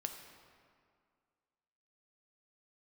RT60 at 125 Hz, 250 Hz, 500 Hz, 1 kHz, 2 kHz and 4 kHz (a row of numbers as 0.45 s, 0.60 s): 2.0 s, 2.2 s, 2.1 s, 2.1 s, 1.8 s, 1.3 s